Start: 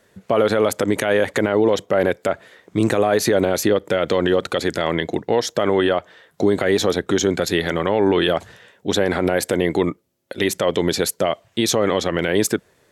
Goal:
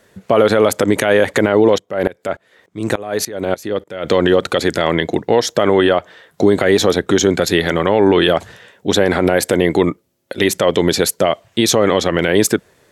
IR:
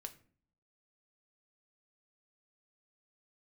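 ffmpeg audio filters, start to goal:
-filter_complex "[0:a]asettb=1/sr,asplit=3[a][b][c];[a]atrim=end=1.784[d];[b]atrim=start=1.78:end=4.05,asetpts=PTS-STARTPTS,afade=t=in:d=0.004:c=qsin,afade=t=out:st=2.266:d=0.004:c=qsin,aeval=exprs='val(0)*pow(10,-22*if(lt(mod(-3.4*n/s,1),2*abs(-3.4)/1000),1-mod(-3.4*n/s,1)/(2*abs(-3.4)/1000),(mod(-3.4*n/s,1)-2*abs(-3.4)/1000)/(1-2*abs(-3.4)/1000))/20)':c=same[e];[c]atrim=start=4.046[f];[d][e]acrossfade=d=0.004:c1=hsin:c2=qsin[g];[g][f]acrossfade=d=0.004:c1=qsin:c2=hsin,volume=5dB"

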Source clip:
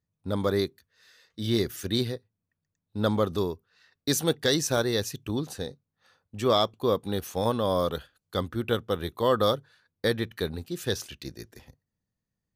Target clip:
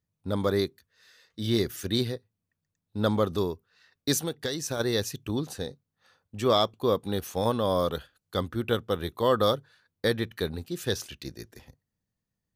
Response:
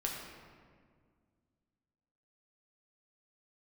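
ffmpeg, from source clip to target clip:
-filter_complex "[0:a]asplit=3[a][b][c];[a]afade=t=out:st=4.18:d=0.02[d];[b]acompressor=threshold=-28dB:ratio=6,afade=t=in:st=4.18:d=0.02,afade=t=out:st=4.79:d=0.02[e];[c]afade=t=in:st=4.79:d=0.02[f];[d][e][f]amix=inputs=3:normalize=0"

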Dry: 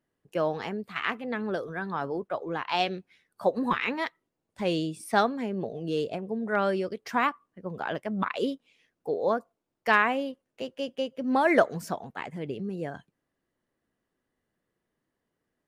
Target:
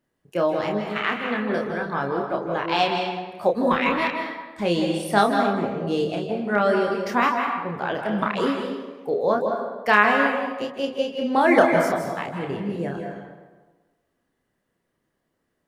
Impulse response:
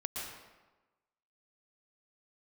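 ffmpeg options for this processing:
-filter_complex "[0:a]asplit=2[a][b];[1:a]atrim=start_sample=2205,asetrate=39690,aresample=44100,adelay=29[c];[b][c]afir=irnorm=-1:irlink=0,volume=-2.5dB[d];[a][d]amix=inputs=2:normalize=0,volume=3.5dB"

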